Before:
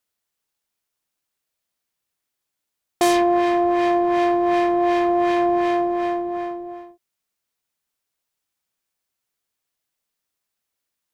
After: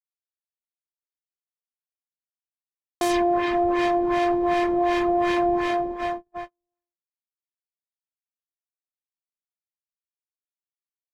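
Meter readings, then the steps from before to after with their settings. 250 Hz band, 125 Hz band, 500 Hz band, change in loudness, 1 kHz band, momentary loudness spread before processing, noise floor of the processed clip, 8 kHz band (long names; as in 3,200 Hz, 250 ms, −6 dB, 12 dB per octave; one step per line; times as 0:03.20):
−3.5 dB, +1.5 dB, −3.5 dB, −3.0 dB, −3.5 dB, 10 LU, below −85 dBFS, −5.5 dB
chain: reverb reduction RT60 1.3 s
noise gate −32 dBFS, range −45 dB
low-shelf EQ 66 Hz +11.5 dB
brickwall limiter −17 dBFS, peak gain reduction 9 dB
level +2.5 dB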